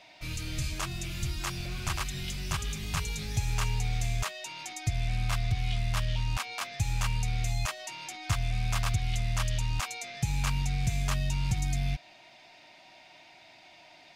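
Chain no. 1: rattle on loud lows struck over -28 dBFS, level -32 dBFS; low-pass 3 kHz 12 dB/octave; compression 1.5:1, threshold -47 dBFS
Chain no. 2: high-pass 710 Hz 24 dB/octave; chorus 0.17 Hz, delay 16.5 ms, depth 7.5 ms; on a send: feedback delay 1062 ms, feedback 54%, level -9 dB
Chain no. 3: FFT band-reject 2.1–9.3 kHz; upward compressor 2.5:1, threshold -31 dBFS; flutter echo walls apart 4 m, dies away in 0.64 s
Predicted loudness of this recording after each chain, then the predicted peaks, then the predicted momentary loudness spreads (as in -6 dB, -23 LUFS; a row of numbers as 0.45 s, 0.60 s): -40.5 LUFS, -40.0 LUFS, -30.0 LUFS; -25.5 dBFS, -21.5 dBFS, -14.5 dBFS; 16 LU, 10 LU, 13 LU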